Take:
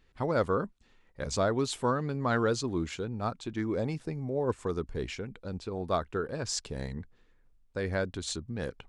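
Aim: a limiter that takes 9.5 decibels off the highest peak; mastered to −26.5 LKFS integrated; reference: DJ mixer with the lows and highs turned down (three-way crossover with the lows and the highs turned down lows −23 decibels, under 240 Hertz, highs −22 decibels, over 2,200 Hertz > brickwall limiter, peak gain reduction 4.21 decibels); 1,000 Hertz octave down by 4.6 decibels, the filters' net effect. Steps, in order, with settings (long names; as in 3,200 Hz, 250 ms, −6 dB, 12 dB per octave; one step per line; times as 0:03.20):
parametric band 1,000 Hz −5.5 dB
brickwall limiter −26 dBFS
three-way crossover with the lows and the highs turned down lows −23 dB, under 240 Hz, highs −22 dB, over 2,200 Hz
level +15 dB
brickwall limiter −14.5 dBFS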